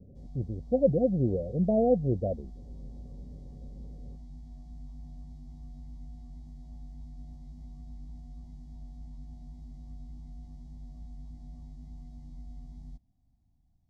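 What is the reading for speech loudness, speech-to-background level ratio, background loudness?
−28.0 LKFS, 20.0 dB, −48.0 LKFS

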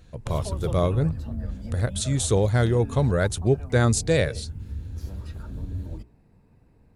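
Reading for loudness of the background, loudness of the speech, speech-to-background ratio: −35.0 LKFS, −24.0 LKFS, 11.0 dB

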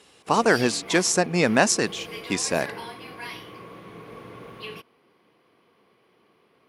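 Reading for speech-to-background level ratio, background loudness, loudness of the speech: 16.5 dB, −38.5 LKFS, −22.0 LKFS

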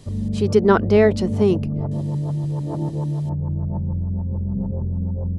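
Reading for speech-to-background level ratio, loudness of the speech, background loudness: 6.5 dB, −18.5 LKFS, −25.0 LKFS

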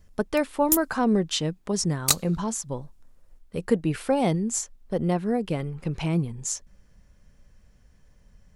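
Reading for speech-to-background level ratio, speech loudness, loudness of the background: −1.5 dB, −27.0 LKFS, −25.5 LKFS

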